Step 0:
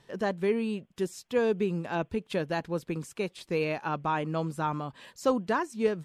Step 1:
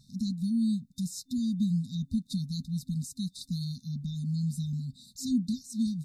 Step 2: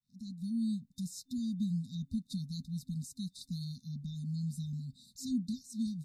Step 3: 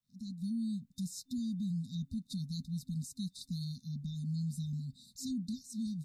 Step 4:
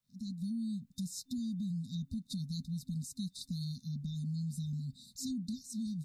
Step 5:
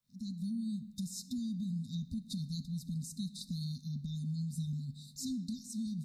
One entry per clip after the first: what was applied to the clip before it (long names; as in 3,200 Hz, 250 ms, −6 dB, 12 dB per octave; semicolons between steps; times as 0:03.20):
brick-wall band-stop 260–3,600 Hz; level +5 dB
fade in at the beginning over 0.58 s; level −6 dB
brickwall limiter −32 dBFS, peak gain reduction 7 dB; level +1 dB
downward compressor 3 to 1, threshold −38 dBFS, peak gain reduction 4 dB; level +2.5 dB
convolution reverb RT60 1.5 s, pre-delay 4 ms, DRR 13.5 dB